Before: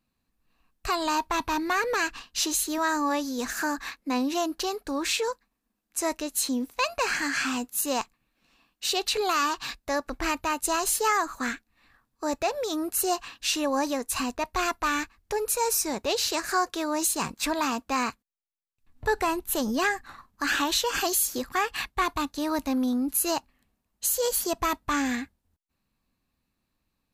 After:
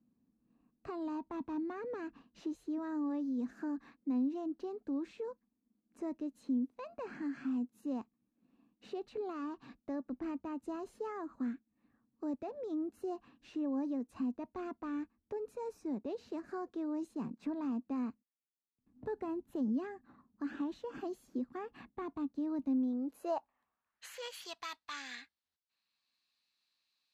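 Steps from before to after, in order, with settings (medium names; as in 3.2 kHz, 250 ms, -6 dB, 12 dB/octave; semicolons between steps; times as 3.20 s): band-pass sweep 240 Hz -> 4.2 kHz, 22.66–24.60 s; three bands compressed up and down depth 40%; trim -2 dB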